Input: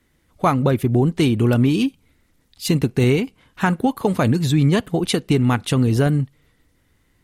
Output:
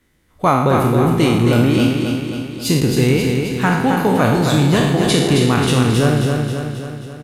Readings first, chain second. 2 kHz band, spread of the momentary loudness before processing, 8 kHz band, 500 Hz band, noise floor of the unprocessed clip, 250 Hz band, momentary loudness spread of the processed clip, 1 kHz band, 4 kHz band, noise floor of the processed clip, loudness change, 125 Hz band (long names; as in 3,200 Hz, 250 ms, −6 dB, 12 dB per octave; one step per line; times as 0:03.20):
+6.0 dB, 6 LU, +7.0 dB, +5.0 dB, −63 dBFS, +3.5 dB, 8 LU, +6.5 dB, +6.5 dB, −51 dBFS, +3.5 dB, +3.0 dB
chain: peak hold with a decay on every bin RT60 0.92 s
on a send: repeating echo 268 ms, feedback 57%, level −5 dB